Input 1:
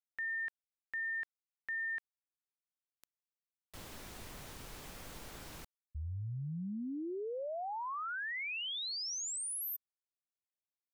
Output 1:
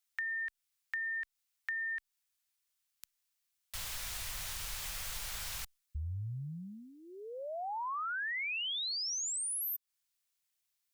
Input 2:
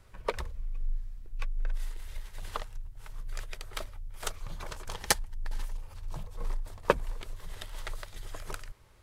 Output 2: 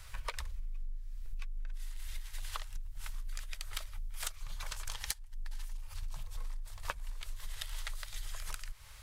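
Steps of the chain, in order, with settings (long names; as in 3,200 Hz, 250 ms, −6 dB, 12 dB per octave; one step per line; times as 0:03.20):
guitar amp tone stack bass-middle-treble 10-0-10
downward compressor 16 to 1, threshold −49 dBFS
level +14 dB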